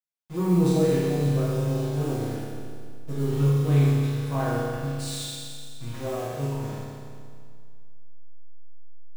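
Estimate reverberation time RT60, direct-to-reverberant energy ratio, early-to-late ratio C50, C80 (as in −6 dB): 2.1 s, −10.0 dB, −3.0 dB, −1.0 dB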